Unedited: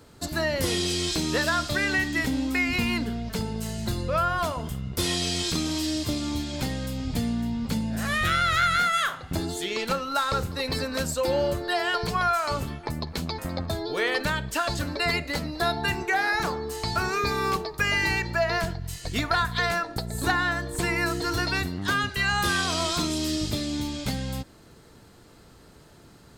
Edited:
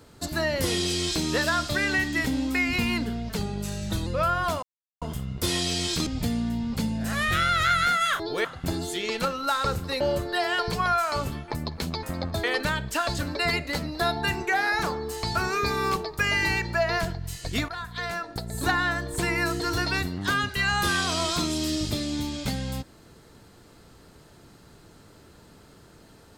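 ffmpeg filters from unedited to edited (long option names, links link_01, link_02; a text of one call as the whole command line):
ffmpeg -i in.wav -filter_complex "[0:a]asplit=10[link_01][link_02][link_03][link_04][link_05][link_06][link_07][link_08][link_09][link_10];[link_01]atrim=end=3.374[link_11];[link_02]atrim=start=3.37:end=4.01,asetpts=PTS-STARTPTS,asetrate=40572,aresample=44100,atrim=end_sample=30678,asetpts=PTS-STARTPTS[link_12];[link_03]atrim=start=4.006:end=4.57,asetpts=PTS-STARTPTS,afade=type=out:start_time=0.56:duration=0.004:curve=hsin,apad=pad_dur=0.39[link_13];[link_04]atrim=start=4.57:end=5.622,asetpts=PTS-STARTPTS,afade=type=in:duration=0.004:curve=hsin[link_14];[link_05]atrim=start=6.988:end=9.122[link_15];[link_06]atrim=start=13.788:end=14.042[link_16];[link_07]atrim=start=9.118:end=10.682[link_17];[link_08]atrim=start=11.358:end=13.792[link_18];[link_09]atrim=start=14.038:end=19.29,asetpts=PTS-STARTPTS,afade=type=out:start_time=5.248:duration=0.004:curve=hsin:silence=0.199526[link_19];[link_10]atrim=start=19.29,asetpts=PTS-STARTPTS,afade=type=in:duration=1.04:silence=0.199526[link_20];[link_11][link_12]acrossfade=duration=0.004:curve1=hsin:curve2=hsin[link_21];[link_13][link_14]concat=n=2:v=0:a=1[link_22];[link_21][link_22]acrossfade=duration=0.004:curve1=hsin:curve2=hsin[link_23];[link_23][link_15]acrossfade=duration=0.004:curve1=hsin:curve2=hsin[link_24];[link_24][link_16]acrossfade=duration=0.004:curve1=hsin:curve2=hsin[link_25];[link_25][link_17]acrossfade=duration=0.004:curve1=hsin:curve2=hsin[link_26];[link_26][link_18]acrossfade=duration=0.004:curve1=hsin:curve2=hsin[link_27];[link_19][link_20]concat=n=2:v=0:a=1[link_28];[link_27][link_28]acrossfade=duration=0.004:curve1=hsin:curve2=hsin" out.wav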